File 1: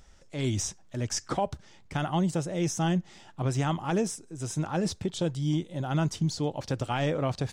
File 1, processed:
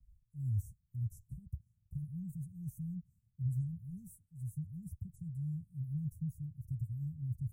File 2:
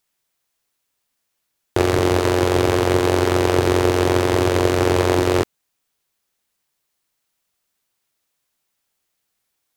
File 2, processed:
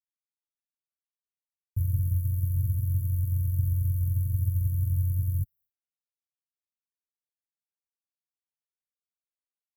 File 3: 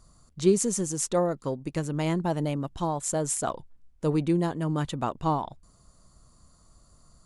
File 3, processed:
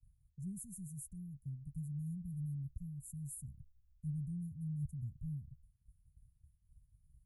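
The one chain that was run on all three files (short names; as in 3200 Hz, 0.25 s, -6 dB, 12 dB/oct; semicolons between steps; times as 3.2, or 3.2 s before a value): inverse Chebyshev band-stop 480–4100 Hz, stop band 70 dB; expander -52 dBFS; notch comb 320 Hz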